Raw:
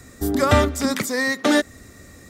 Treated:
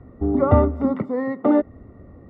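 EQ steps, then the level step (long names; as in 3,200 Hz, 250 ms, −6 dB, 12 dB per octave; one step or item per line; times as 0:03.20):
Savitzky-Golay smoothing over 65 samples
high-frequency loss of the air 460 metres
+2.5 dB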